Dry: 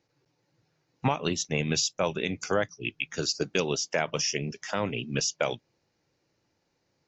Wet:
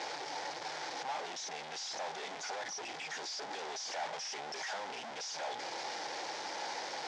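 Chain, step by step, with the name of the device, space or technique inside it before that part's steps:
home computer beeper (sign of each sample alone; loudspeaker in its box 630–5,700 Hz, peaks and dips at 810 Hz +9 dB, 1,200 Hz −5 dB, 2,700 Hz −6 dB, 4,100 Hz −3 dB)
level −5.5 dB

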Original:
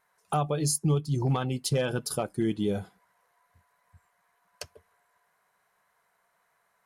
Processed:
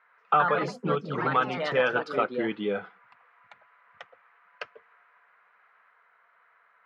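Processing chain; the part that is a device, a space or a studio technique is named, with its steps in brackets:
delay with pitch and tempo change per echo 126 ms, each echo +3 semitones, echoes 3, each echo −6 dB
high-pass filter 140 Hz 24 dB per octave
bass cabinet (loudspeaker in its box 89–2,300 Hz, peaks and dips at 150 Hz −4 dB, 480 Hz +7 dB, 1,300 Hz +8 dB)
tilt shelving filter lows −9 dB
high-shelf EQ 3,600 Hz +6 dB
level +3.5 dB

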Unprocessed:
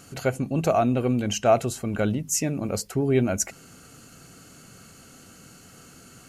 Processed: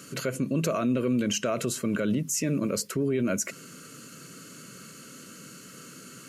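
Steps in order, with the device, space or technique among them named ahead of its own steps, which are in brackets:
PA system with an anti-feedback notch (high-pass filter 140 Hz 24 dB per octave; Butterworth band-reject 780 Hz, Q 2.1; brickwall limiter −22 dBFS, peak gain reduction 11.5 dB)
level +3.5 dB

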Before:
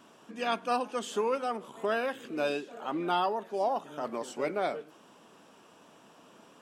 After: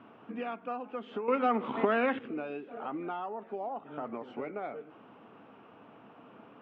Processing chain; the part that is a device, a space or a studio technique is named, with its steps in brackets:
bass amplifier (downward compressor 5 to 1, threshold −38 dBFS, peak gain reduction 13 dB; loudspeaker in its box 67–2,200 Hz, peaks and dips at 110 Hz +4 dB, 170 Hz −6 dB, 360 Hz −5 dB, 580 Hz −6 dB, 1,000 Hz −6 dB, 1,700 Hz −8 dB)
0:01.28–0:02.19: octave-band graphic EQ 125/250/500/1,000/2,000/4,000/8,000 Hz +3/+12/+5/+8/+11/+12/+11 dB
level +6.5 dB

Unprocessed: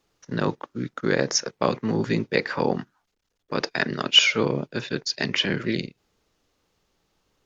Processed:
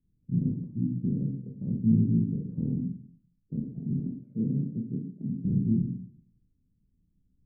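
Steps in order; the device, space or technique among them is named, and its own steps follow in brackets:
0:03.99–0:05.35: high-pass filter 170 Hz 12 dB per octave
club heard from the street (brickwall limiter −14 dBFS, peak gain reduction 11.5 dB; low-pass filter 200 Hz 24 dB per octave; convolution reverb RT60 0.55 s, pre-delay 22 ms, DRR 1 dB)
level +4.5 dB

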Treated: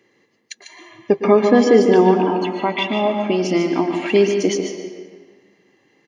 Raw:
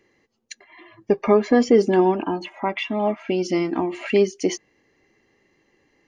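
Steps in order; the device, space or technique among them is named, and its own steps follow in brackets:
PA in a hall (high-pass filter 110 Hz 24 dB per octave; parametric band 3,400 Hz +5 dB 0.26 octaves; single-tap delay 147 ms −8.5 dB; convolution reverb RT60 1.7 s, pre-delay 104 ms, DRR 7 dB)
level +3 dB

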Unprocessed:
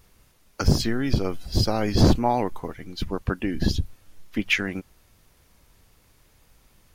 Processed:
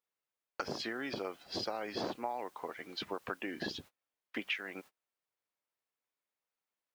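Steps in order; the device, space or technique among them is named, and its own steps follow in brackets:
baby monitor (band-pass filter 500–3,400 Hz; downward compressor 6 to 1, threshold −36 dBFS, peak gain reduction 17 dB; white noise bed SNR 25 dB; noise gate −53 dBFS, range −31 dB)
level +1 dB

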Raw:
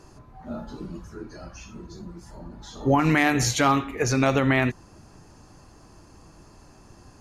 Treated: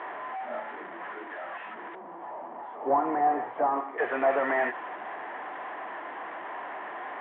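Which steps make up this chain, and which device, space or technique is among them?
digital answering machine (band-pass filter 330–3,300 Hz; linear delta modulator 16 kbit/s, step −35.5 dBFS; loudspeaker in its box 410–3,100 Hz, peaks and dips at 720 Hz +9 dB, 1,000 Hz +6 dB, 1,800 Hz +9 dB, 2,600 Hz −7 dB)
0:01.95–0:03.98: flat-topped bell 3,100 Hz −13.5 dB 2.5 octaves

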